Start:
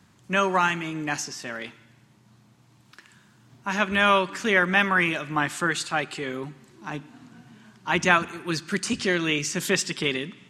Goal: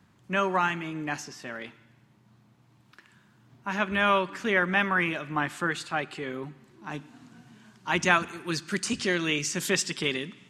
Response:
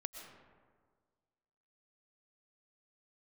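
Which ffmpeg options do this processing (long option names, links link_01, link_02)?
-af "asetnsamples=nb_out_samples=441:pad=0,asendcmd='6.9 equalizer g 2',equalizer=frequency=7500:width_type=o:width=1.9:gain=-7,volume=-3dB"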